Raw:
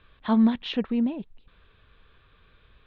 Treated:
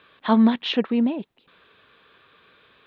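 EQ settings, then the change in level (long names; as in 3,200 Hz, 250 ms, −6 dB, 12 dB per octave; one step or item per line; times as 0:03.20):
high-pass filter 250 Hz 12 dB per octave
+7.0 dB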